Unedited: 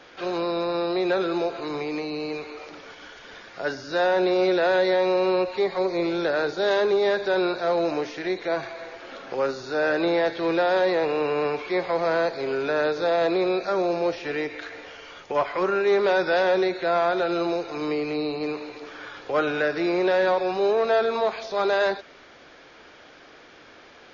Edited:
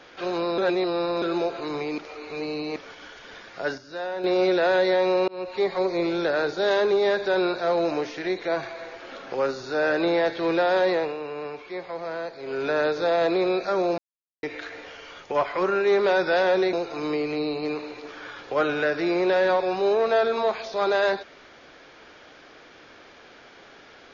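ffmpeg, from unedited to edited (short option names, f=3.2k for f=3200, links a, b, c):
-filter_complex "[0:a]asplit=13[a][b][c][d][e][f][g][h][i][j][k][l][m];[a]atrim=end=0.582[n];[b]atrim=start=0.578:end=1.222,asetpts=PTS-STARTPTS,areverse[o];[c]atrim=start=1.218:end=1.982[p];[d]atrim=start=1.978:end=2.762,asetpts=PTS-STARTPTS,areverse[q];[e]atrim=start=2.758:end=3.78,asetpts=PTS-STARTPTS,afade=t=out:st=0.872:d=0.15:c=log:silence=0.334965[r];[f]atrim=start=3.78:end=4.24,asetpts=PTS-STARTPTS,volume=-9.5dB[s];[g]atrim=start=4.24:end=5.28,asetpts=PTS-STARTPTS,afade=t=in:d=0.15:c=log:silence=0.334965,afade=t=out:st=1.036:d=0.004:c=hsin[t];[h]atrim=start=5.28:end=11.17,asetpts=PTS-STARTPTS,afade=t=in:d=0.35,afade=t=out:st=5.65:d=0.24:silence=0.354813[u];[i]atrim=start=11.17:end=12.42,asetpts=PTS-STARTPTS,volume=-9dB[v];[j]atrim=start=12.42:end=13.98,asetpts=PTS-STARTPTS,afade=t=in:d=0.24:silence=0.354813,afade=t=out:st=1.556:d=0.004:c=hsin[w];[k]atrim=start=13.98:end=14.43,asetpts=PTS-STARTPTS,volume=0[x];[l]atrim=start=14.43:end=16.732,asetpts=PTS-STARTPTS,afade=t=in:d=0.004:c=hsin[y];[m]atrim=start=17.508[z];[n][o]acrossfade=d=0.004:c1=hsin:c2=hsin[aa];[aa][p]acrossfade=d=0.004:c1=hsin:c2=hsin[ab];[ab][q]acrossfade=d=0.004:c1=hsin:c2=hsin[ac];[r][s][t][u][v][w][x][y]concat=n=8:v=0:a=1[ad];[ac][ad]acrossfade=d=0.004:c1=hsin:c2=hsin[ae];[ae][z]acrossfade=d=0.004:c1=hsin:c2=hsin"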